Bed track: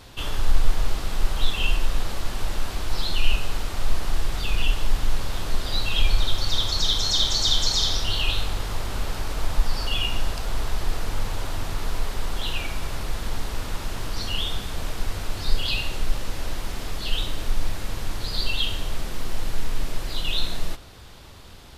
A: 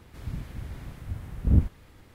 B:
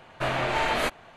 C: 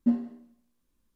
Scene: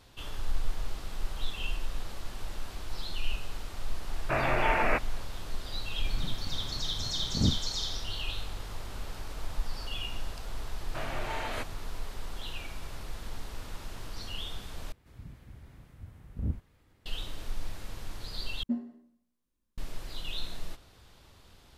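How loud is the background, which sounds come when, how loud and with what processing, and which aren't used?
bed track -11.5 dB
4.09 add B -1.5 dB + careless resampling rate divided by 8×, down none, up filtered
5.9 add A -1 dB + HPF 120 Hz
10.74 add B -11 dB
14.92 replace with A -12 dB
18.63 replace with C -8 dB

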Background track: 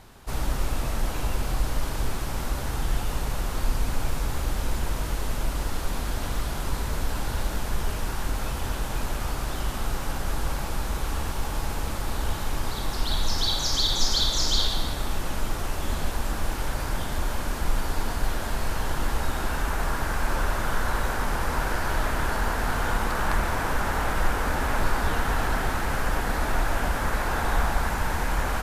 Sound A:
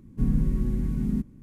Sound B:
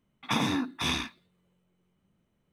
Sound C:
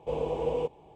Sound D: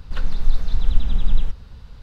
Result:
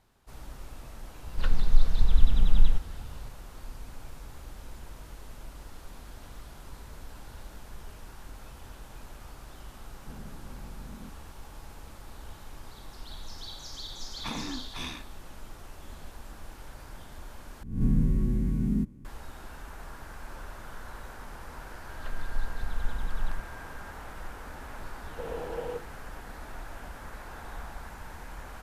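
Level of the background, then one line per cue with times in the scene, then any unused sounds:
background track -17 dB
1.27 add D -2 dB
9.88 add A -17.5 dB + hard clip -24 dBFS
13.95 add B -9 dB
17.63 replace with A -2 dB + spectral swells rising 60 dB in 0.53 s
21.89 add D -13.5 dB + whine 1600 Hz -36 dBFS
25.11 add C -6 dB + notches 50/100/150/200/250/300/350/400/450/500 Hz

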